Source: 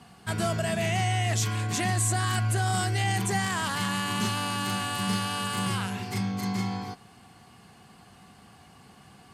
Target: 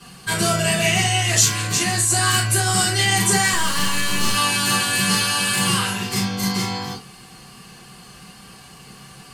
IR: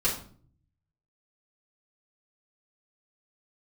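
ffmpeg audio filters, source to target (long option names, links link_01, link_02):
-filter_complex "[0:a]highshelf=frequency=2400:gain=11,asplit=3[link_01][link_02][link_03];[link_01]afade=type=out:start_time=1.6:duration=0.02[link_04];[link_02]acompressor=threshold=-21dB:ratio=6,afade=type=in:start_time=1.6:duration=0.02,afade=type=out:start_time=2.09:duration=0.02[link_05];[link_03]afade=type=in:start_time=2.09:duration=0.02[link_06];[link_04][link_05][link_06]amix=inputs=3:normalize=0,asettb=1/sr,asplit=3[link_07][link_08][link_09];[link_07]atrim=end=3.534[link_10];[link_08]atrim=start=3.53:end=4.34,asetpts=PTS-STARTPTS,afade=type=in:duration=0.004:curve=qsin,afade=type=out:start_time=0.806:duration=0.004:curve=qsin,aeval=exprs='(tanh(12.6*val(0)+0.45)-tanh(0.45))/12.6':channel_layout=same[link_11];[link_09]atrim=start=4.336[link_12];[link_10][link_11]acrossfade=duration=0.004:curve1=hsin:curve2=qsin[link_13];[link_13][link_12]acrossfade=duration=0.004:curve1=qsin:curve2=hsin[link_14];[1:a]atrim=start_sample=2205,atrim=end_sample=3528[link_15];[link_14][link_15]afir=irnorm=-1:irlink=0,volume=-2.5dB"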